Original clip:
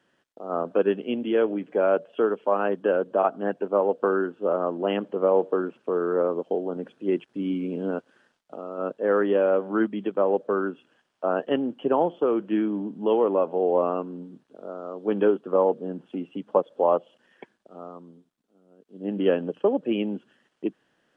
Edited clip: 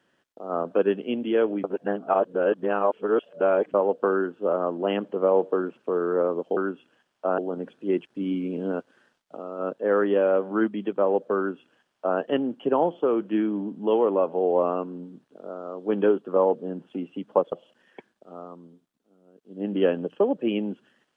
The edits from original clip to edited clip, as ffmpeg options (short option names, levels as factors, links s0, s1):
-filter_complex "[0:a]asplit=6[s0][s1][s2][s3][s4][s5];[s0]atrim=end=1.642[s6];[s1]atrim=start=1.638:end=3.742,asetpts=PTS-STARTPTS,areverse[s7];[s2]atrim=start=3.738:end=6.572[s8];[s3]atrim=start=10.558:end=11.372[s9];[s4]atrim=start=6.568:end=16.712[s10];[s5]atrim=start=16.958[s11];[s6][s7]acrossfade=d=0.004:c1=hsin:c2=hsin[s12];[s12][s8]acrossfade=d=0.004:c1=hsin:c2=hsin[s13];[s13][s9]acrossfade=d=0.004:c1=hsin:c2=hsin[s14];[s14][s10]acrossfade=d=0.004:c1=hsin:c2=hsin[s15];[s15][s11]acrossfade=d=0.004:c1=hsin:c2=hsin"